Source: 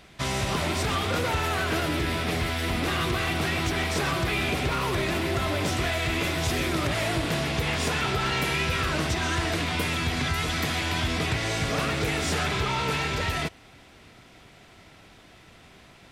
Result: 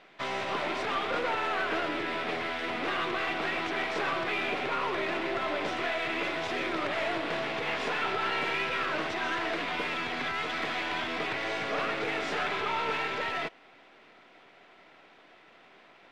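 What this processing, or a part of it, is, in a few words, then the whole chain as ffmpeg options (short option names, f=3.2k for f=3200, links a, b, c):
crystal radio: -af "highpass=370,lowpass=2.8k,aeval=exprs='if(lt(val(0),0),0.708*val(0),val(0))':c=same"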